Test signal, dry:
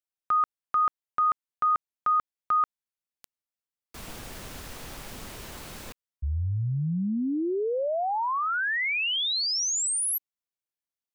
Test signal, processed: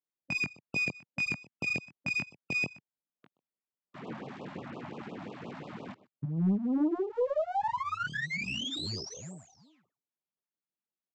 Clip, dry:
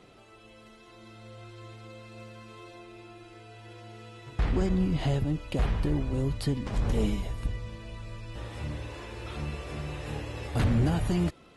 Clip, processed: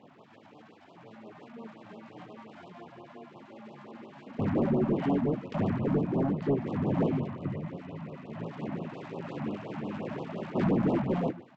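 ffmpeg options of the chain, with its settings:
ffmpeg -i in.wav -filter_complex "[0:a]lowpass=frequency=2400:width=0.5412,lowpass=frequency=2400:width=1.3066,asplit=2[link_01][link_02];[link_02]aecho=0:1:125:0.0944[link_03];[link_01][link_03]amix=inputs=2:normalize=0,flanger=delay=20:depth=2.8:speed=2.5,aresample=16000,aeval=exprs='abs(val(0))':channel_layout=same,aresample=44100,highpass=frequency=140:width=0.5412,highpass=frequency=140:width=1.3066,tiltshelf=frequency=1200:gain=6.5,asoftclip=type=tanh:threshold=-25dB,afftfilt=real='re*(1-between(b*sr/1024,370*pow(1900/370,0.5+0.5*sin(2*PI*5.7*pts/sr))/1.41,370*pow(1900/370,0.5+0.5*sin(2*PI*5.7*pts/sr))*1.41))':imag='im*(1-between(b*sr/1024,370*pow(1900/370,0.5+0.5*sin(2*PI*5.7*pts/sr))/1.41,370*pow(1900/370,0.5+0.5*sin(2*PI*5.7*pts/sr))*1.41))':win_size=1024:overlap=0.75,volume=6dB" out.wav

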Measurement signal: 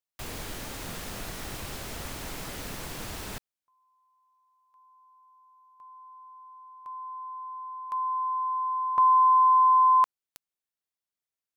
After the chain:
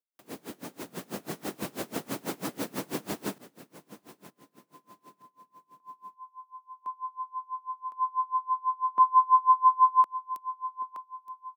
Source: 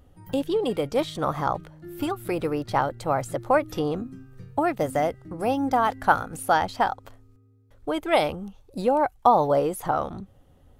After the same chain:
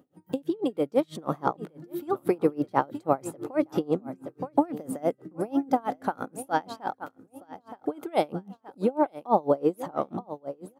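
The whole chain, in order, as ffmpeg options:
ffmpeg -i in.wav -filter_complex "[0:a]crystalizer=i=0.5:c=0,highpass=frequency=160:width=0.5412,highpass=frequency=160:width=1.3066,tiltshelf=frequency=1100:gain=5,aecho=1:1:921|1842|2763:0.133|0.052|0.0203,dynaudnorm=framelen=500:gausssize=5:maxgain=9dB,equalizer=frequency=310:width_type=o:width=1.2:gain=4.5,asplit=2[link_01][link_02];[link_02]acompressor=threshold=-26dB:ratio=6:release=42,volume=-2.5dB[link_03];[link_01][link_03]amix=inputs=2:normalize=0,aeval=exprs='val(0)*pow(10,-28*(0.5-0.5*cos(2*PI*6.1*n/s))/20)':channel_layout=same,volume=-6.5dB" out.wav

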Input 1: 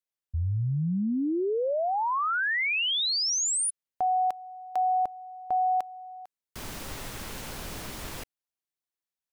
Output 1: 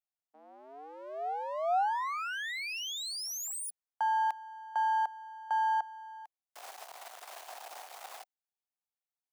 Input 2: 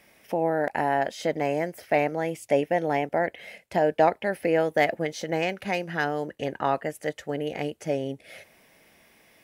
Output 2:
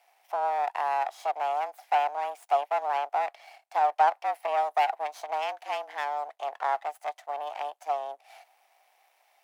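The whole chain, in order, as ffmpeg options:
ffmpeg -i in.wav -af "aeval=exprs='max(val(0),0)':channel_layout=same,highpass=frequency=600:width_type=q:width=4.2,afreqshift=140,volume=-6dB" out.wav

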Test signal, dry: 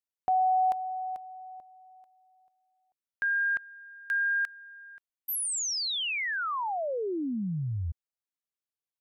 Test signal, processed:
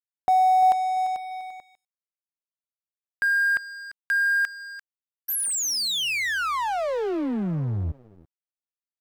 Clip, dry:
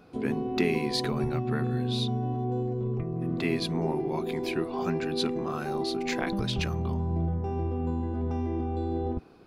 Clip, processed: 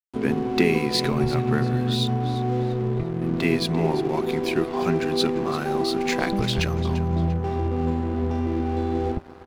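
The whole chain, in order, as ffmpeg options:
ffmpeg -i in.wav -filter_complex "[0:a]asplit=2[link_01][link_02];[link_02]aecho=0:1:344|688|1032:0.2|0.0658|0.0217[link_03];[link_01][link_03]amix=inputs=2:normalize=0,aeval=exprs='sgn(val(0))*max(abs(val(0))-0.00668,0)':channel_layout=same,volume=7dB" out.wav

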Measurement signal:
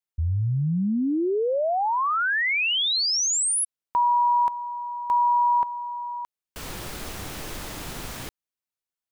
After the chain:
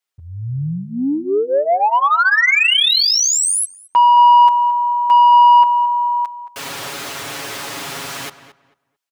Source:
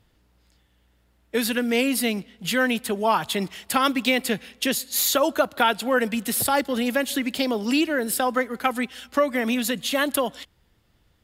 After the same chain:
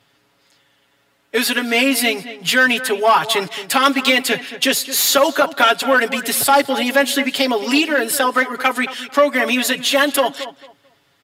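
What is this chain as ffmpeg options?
ffmpeg -i in.wav -filter_complex "[0:a]aecho=1:1:7.2:0.87,asplit=2[link_01][link_02];[link_02]highpass=frequency=720:poles=1,volume=14dB,asoftclip=type=tanh:threshold=-2.5dB[link_03];[link_01][link_03]amix=inputs=2:normalize=0,lowpass=frequency=6500:poles=1,volume=-6dB,highpass=90,asplit=2[link_04][link_05];[link_05]adelay=222,lowpass=frequency=2500:poles=1,volume=-13dB,asplit=2[link_06][link_07];[link_07]adelay=222,lowpass=frequency=2500:poles=1,volume=0.22,asplit=2[link_08][link_09];[link_09]adelay=222,lowpass=frequency=2500:poles=1,volume=0.22[link_10];[link_04][link_06][link_08][link_10]amix=inputs=4:normalize=0" out.wav

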